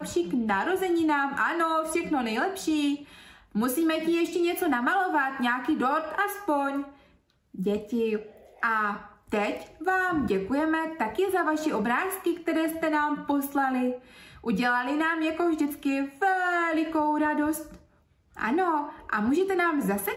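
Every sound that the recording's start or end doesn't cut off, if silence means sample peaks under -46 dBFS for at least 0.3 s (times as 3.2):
7.54–17.81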